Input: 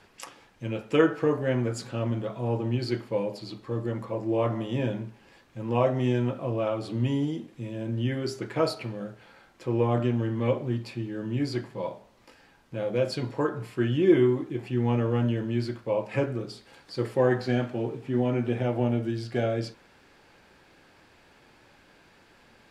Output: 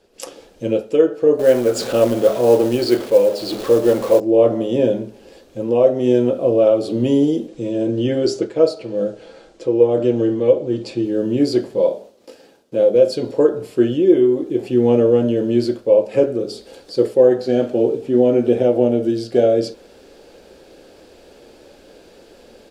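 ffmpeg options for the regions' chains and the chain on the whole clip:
-filter_complex "[0:a]asettb=1/sr,asplit=3[a][b][c];[a]atrim=end=1.394[d];[b]atrim=start=1.39:end=4.2,asetpts=PTS-STARTPTS,afade=t=in:d=0.004:c=qsin,afade=t=out:st=2.806:d=0.004:c=qsin,aeval=exprs='val(0)+0.5*0.0133*sgn(val(0))':c=same,equalizer=f=1.5k:t=o:w=3:g=11,acrusher=bits=5:mode=log:mix=0:aa=0.000001[e];[c]atrim=start=4.196[f];[d][e]acrossfade=d=0.004:c1=hsin:c2=qsin[g];[g][f]acrossfade=d=0.004:c1=qsin:c2=hsin,asettb=1/sr,asplit=3[h][i][j];[h]atrim=end=7.484[k];[i]atrim=start=7.48:end=11.05,asetpts=PTS-STARTPTS,afade=t=in:d=0.004:c=qsin,afade=t=out:st=3.566:d=0.004:c=qsin,lowpass=f=8.8k:w=0.5412,lowpass=f=8.8k:w=1.3066,aecho=1:1:6.2:0.33,atrim=end_sample=157437[l];[j]atrim=start=11.046[m];[k][l]acrossfade=d=0.004:c1=hsin:c2=qsin[n];[n][m]acrossfade=d=0.004:c1=qsin:c2=hsin,asettb=1/sr,asplit=3[o][p][q];[o]atrim=end=11.804[r];[p]atrim=start=11.8:end=12.96,asetpts=PTS-STARTPTS,afade=t=in:d=0.004:c=qsin,afade=t=out:st=1.156:d=0.004:c=qsin,highpass=130,agate=range=-33dB:threshold=-57dB:ratio=3:release=100:detection=peak[s];[q]atrim=start=12.956[t];[r][s]acrossfade=d=0.004:c1=hsin:c2=qsin[u];[u][t]acrossfade=d=0.004:c1=qsin:c2=hsin,equalizer=f=125:t=o:w=1:g=-11,equalizer=f=500:t=o:w=1:g=10,equalizer=f=1k:t=o:w=1:g=-10,equalizer=f=2k:t=o:w=1:g=-10,dynaudnorm=f=120:g=3:m=13.5dB,volume=-1dB"

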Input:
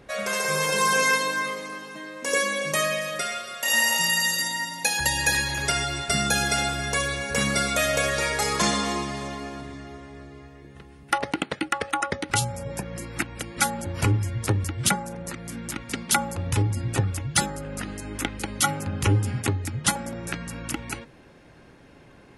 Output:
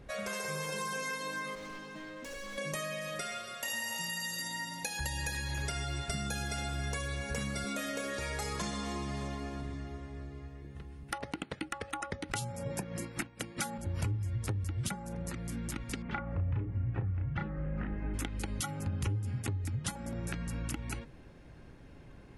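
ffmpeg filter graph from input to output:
-filter_complex "[0:a]asettb=1/sr,asplit=3[a][b][c];[a]atrim=end=1.554[d];[b]atrim=start=1.55:end=2.58,asetpts=PTS-STARTPTS,afade=t=in:d=0.004:c=qsin,afade=t=out:st=1.026:d=0.004:c=qsin,lowpass=7.3k,acompressor=threshold=-28dB:ratio=10:attack=3.2:release=140:knee=1:detection=peak,volume=35dB,asoftclip=hard,volume=-35dB[e];[c]atrim=start=2.576[f];[d][e]acrossfade=d=0.004:c1=hsin:c2=qsin[g];[g][f]acrossfade=d=0.004:c1=qsin:c2=hsin,asettb=1/sr,asplit=3[h][i][j];[h]atrim=end=7.644[k];[i]atrim=start=7.64:end=8.19,asetpts=PTS-STARTPTS,afade=t=in:d=0.004:c=qsin,afade=t=out:st=0.546:d=0.004:c=qsin,highpass=f=250:t=q:w=1.9,asplit=2[l][m];[m]adelay=25,volume=-5.5dB[n];[l][n]amix=inputs=2:normalize=0,atrim=end_sample=24255[o];[j]atrim=start=8.186[p];[k][o]acrossfade=d=0.004:c1=hsin:c2=qsin[q];[q][p]acrossfade=d=0.004:c1=qsin:c2=hsin,asettb=1/sr,asplit=3[r][s][t];[r]atrim=end=12.324[u];[s]atrim=start=12.32:end=13.78,asetpts=PTS-STARTPTS,afade=t=in:d=0.004:c=qsin,afade=t=out:st=1.456:d=0.004:c=qsin,highpass=160,acontrast=66,agate=range=-33dB:threshold=-28dB:ratio=3:release=100:detection=peak[v];[t]atrim=start=13.776[w];[u][v]acrossfade=d=0.004:c1=hsin:c2=qsin[x];[x][w]acrossfade=d=0.004:c1=qsin:c2=hsin,asettb=1/sr,asplit=3[y][z][aa];[y]atrim=end=16.024[ab];[z]atrim=start=16.02:end=18.14,asetpts=PTS-STARTPTS,afade=t=in:d=0.004:c=qsin,afade=t=out:st=2.116:d=0.004:c=qsin,lowpass=f=2.2k:w=0.5412,lowpass=f=2.2k:w=1.3066,asplit=2[ac][ad];[ad]adelay=33,volume=-2dB[ae];[ac][ae]amix=inputs=2:normalize=0,atrim=end_sample=93492[af];[aa]atrim=start=18.136[ag];[ab][af]acrossfade=d=0.004:c1=hsin:c2=qsin[ah];[ah][ag]acrossfade=d=0.004:c1=qsin:c2=hsin,lowshelf=f=250:g=6,acompressor=threshold=-27dB:ratio=6,lowshelf=f=75:g=10.5,volume=-7.5dB"

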